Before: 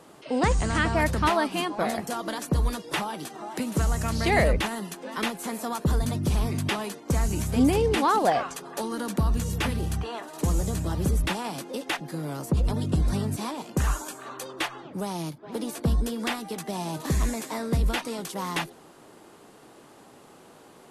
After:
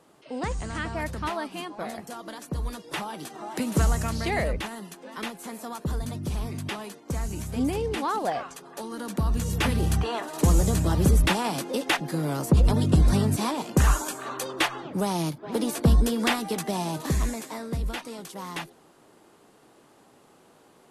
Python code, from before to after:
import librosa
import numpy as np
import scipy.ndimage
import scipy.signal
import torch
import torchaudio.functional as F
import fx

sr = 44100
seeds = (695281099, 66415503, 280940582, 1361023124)

y = fx.gain(x, sr, db=fx.line((2.47, -7.5), (3.84, 3.0), (4.37, -5.5), (8.82, -5.5), (9.9, 5.0), (16.56, 5.0), (17.74, -5.5)))